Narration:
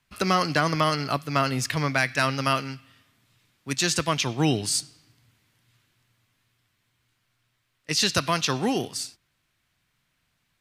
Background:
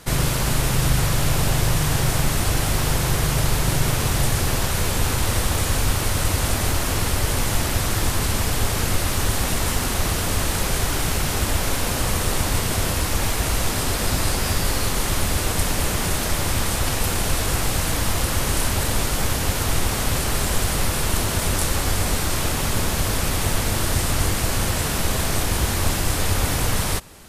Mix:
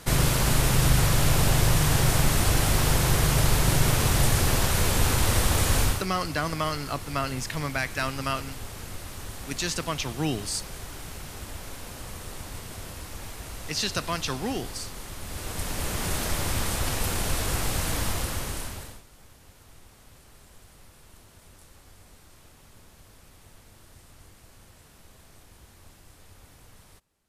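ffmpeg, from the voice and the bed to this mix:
ffmpeg -i stem1.wav -i stem2.wav -filter_complex "[0:a]adelay=5800,volume=-5.5dB[link_01];[1:a]volume=10dB,afade=type=out:start_time=5.82:duration=0.24:silence=0.16788,afade=type=in:start_time=15.2:duration=0.98:silence=0.266073,afade=type=out:start_time=18.01:duration=1.01:silence=0.0530884[link_02];[link_01][link_02]amix=inputs=2:normalize=0" out.wav

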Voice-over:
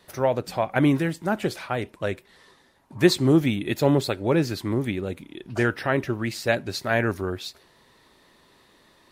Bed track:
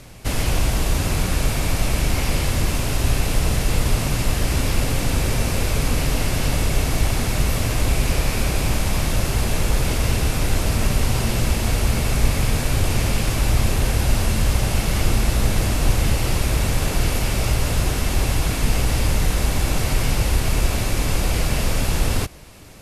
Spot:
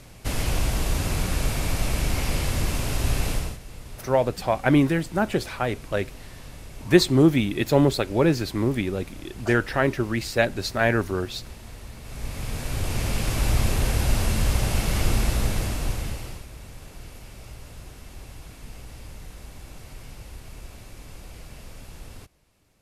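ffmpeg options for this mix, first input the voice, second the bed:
ffmpeg -i stem1.wav -i stem2.wav -filter_complex "[0:a]adelay=3900,volume=1.5dB[link_01];[1:a]volume=13.5dB,afade=type=out:start_time=3.29:duration=0.29:silence=0.141254,afade=type=in:start_time=12.01:duration=1.45:silence=0.125893,afade=type=out:start_time=15.21:duration=1.25:silence=0.11885[link_02];[link_01][link_02]amix=inputs=2:normalize=0" out.wav

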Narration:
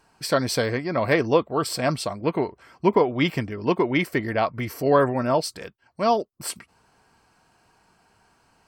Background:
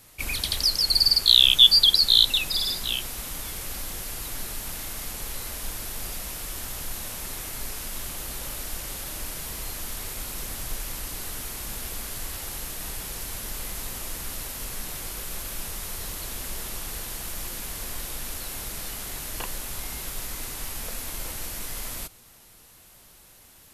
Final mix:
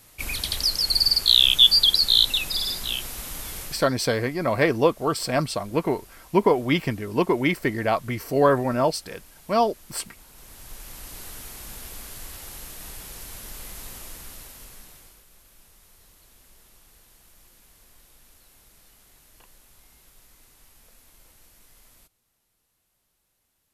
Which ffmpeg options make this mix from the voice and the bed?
ffmpeg -i stem1.wav -i stem2.wav -filter_complex "[0:a]adelay=3500,volume=0dB[link_01];[1:a]volume=11dB,afade=type=out:start_time=3.6:duration=0.28:silence=0.158489,afade=type=in:start_time=10.31:duration=0.88:silence=0.266073,afade=type=out:start_time=13.93:duration=1.32:silence=0.158489[link_02];[link_01][link_02]amix=inputs=2:normalize=0" out.wav

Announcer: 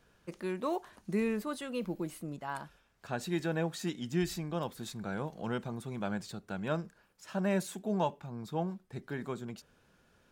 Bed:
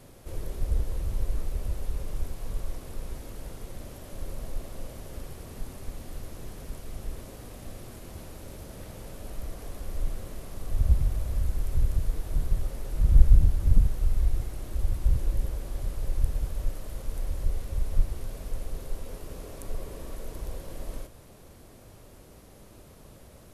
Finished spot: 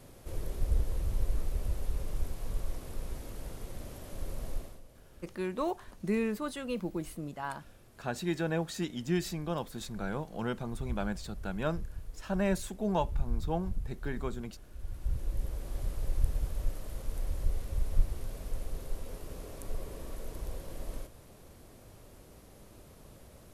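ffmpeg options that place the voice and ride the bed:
ffmpeg -i stem1.wav -i stem2.wav -filter_complex "[0:a]adelay=4950,volume=1dB[link_01];[1:a]volume=11dB,afade=type=out:start_time=4.54:duration=0.27:silence=0.199526,afade=type=in:start_time=14.77:duration=1.01:silence=0.223872[link_02];[link_01][link_02]amix=inputs=2:normalize=0" out.wav

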